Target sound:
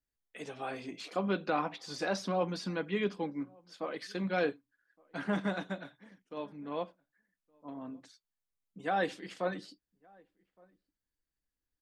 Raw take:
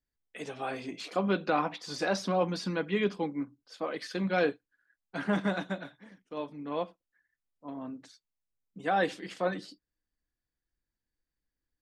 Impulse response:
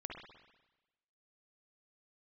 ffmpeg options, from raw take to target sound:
-filter_complex "[0:a]asplit=2[s0][s1];[s1]adelay=1166,volume=0.0398,highshelf=f=4000:g=-26.2[s2];[s0][s2]amix=inputs=2:normalize=0,volume=0.668"

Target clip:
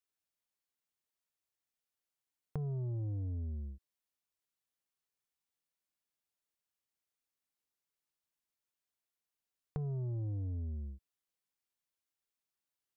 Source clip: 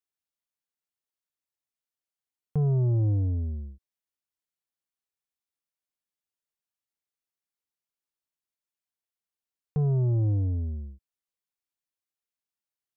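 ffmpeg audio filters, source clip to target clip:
-af "acompressor=threshold=0.0126:ratio=6"

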